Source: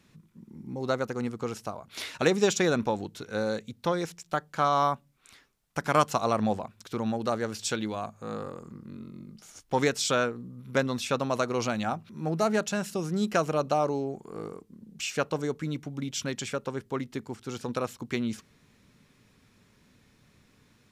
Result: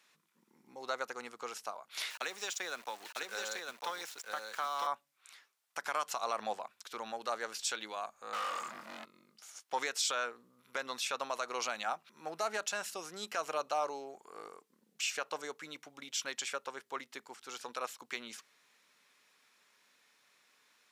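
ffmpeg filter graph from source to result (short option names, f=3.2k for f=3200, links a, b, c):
-filter_complex "[0:a]asettb=1/sr,asplit=3[a][b][c];[a]atrim=end=2.104[d];[b]atrim=start=2.1:end=4.87,asetpts=PTS-STARTPTS,afade=t=in:d=0.004:c=qsin,afade=t=out:st=2.766:d=0.004:c=qsin,acrossover=split=120|300|1200[e][f][g][h];[e]acompressor=threshold=-58dB:ratio=3[i];[f]acompressor=threshold=-44dB:ratio=3[j];[g]acompressor=threshold=-38dB:ratio=3[k];[h]acompressor=threshold=-37dB:ratio=3[l];[i][j][k][l]amix=inputs=4:normalize=0,aeval=exprs='val(0)*gte(abs(val(0)),0.00596)':c=same,aecho=1:1:951:0.668,atrim=end_sample=122157[m];[c]atrim=start=4.866[n];[d][m]acrossfade=d=0.004:c1=hsin:c2=qsin[o];[o][n]acrossfade=d=0.004:c1=qsin:c2=hsin,asettb=1/sr,asplit=3[p][q][r];[p]atrim=end=8.334[s];[q]atrim=start=8.33:end=9.05,asetpts=PTS-STARTPTS,afade=t=in:d=0.004:c=qsin,afade=t=out:st=0.716:d=0.004:c=qsin,highpass=f=43:w=0.5412,highpass=f=43:w=1.3066,equalizer=f=430:t=o:w=0.47:g=-15,asplit=2[t][u];[u]highpass=f=720:p=1,volume=35dB,asoftclip=type=tanh:threshold=-25.5dB[v];[t][v]amix=inputs=2:normalize=0,lowpass=f=3.1k:p=1,volume=-6dB[w];[r]atrim=start=9.046[x];[s][w]acrossfade=d=0.004:c1=hsin:c2=qsin[y];[y][x]acrossfade=d=0.004:c1=qsin:c2=hsin,highpass=820,alimiter=limit=-21dB:level=0:latency=1:release=72,volume=-1.5dB"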